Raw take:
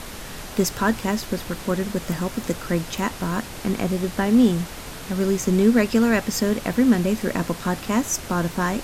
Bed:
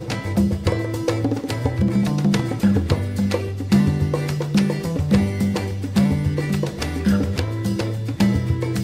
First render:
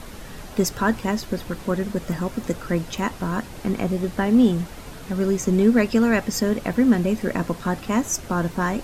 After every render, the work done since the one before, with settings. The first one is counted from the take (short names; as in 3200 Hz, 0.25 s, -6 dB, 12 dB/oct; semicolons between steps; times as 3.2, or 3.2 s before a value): denoiser 7 dB, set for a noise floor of -36 dBFS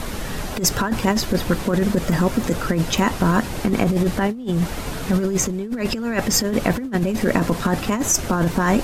in parallel at +2.5 dB: limiter -18 dBFS, peak gain reduction 11 dB; on the sum: negative-ratio compressor -18 dBFS, ratio -0.5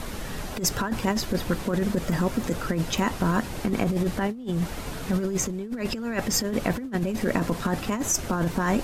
gain -6 dB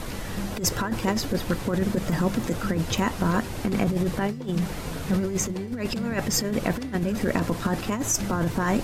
add bed -15 dB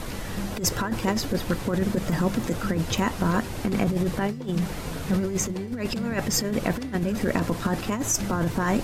nothing audible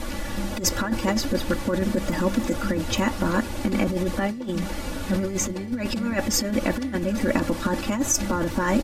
high shelf 12000 Hz -4 dB; comb 3.5 ms, depth 84%